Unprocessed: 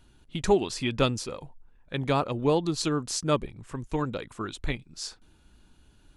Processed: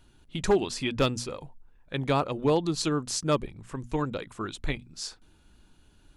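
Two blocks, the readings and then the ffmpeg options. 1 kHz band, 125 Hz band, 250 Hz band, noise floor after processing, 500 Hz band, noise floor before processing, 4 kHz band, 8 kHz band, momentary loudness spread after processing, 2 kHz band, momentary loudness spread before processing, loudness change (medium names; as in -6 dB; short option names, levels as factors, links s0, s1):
-0.5 dB, -1.0 dB, -0.5 dB, -60 dBFS, -0.5 dB, -60 dBFS, 0.0 dB, 0.0 dB, 12 LU, 0.0 dB, 13 LU, -0.5 dB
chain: -af "bandreject=f=60:t=h:w=6,bandreject=f=120:t=h:w=6,bandreject=f=180:t=h:w=6,bandreject=f=240:t=h:w=6,volume=5.96,asoftclip=hard,volume=0.168"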